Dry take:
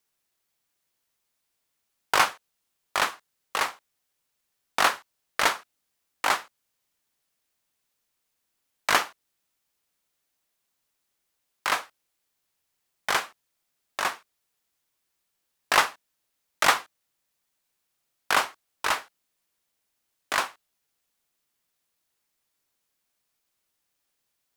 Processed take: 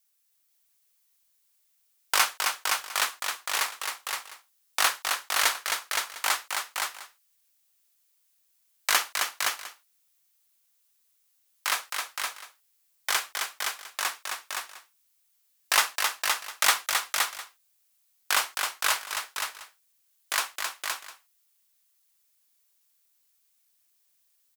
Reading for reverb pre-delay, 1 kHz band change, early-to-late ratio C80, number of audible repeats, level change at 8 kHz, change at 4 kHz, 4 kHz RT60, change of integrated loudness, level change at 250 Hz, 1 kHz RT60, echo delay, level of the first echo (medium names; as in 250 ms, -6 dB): no reverb, -3.0 dB, no reverb, 3, +7.0 dB, +3.5 dB, no reverb, -1.0 dB, -10.5 dB, no reverb, 265 ms, -5.0 dB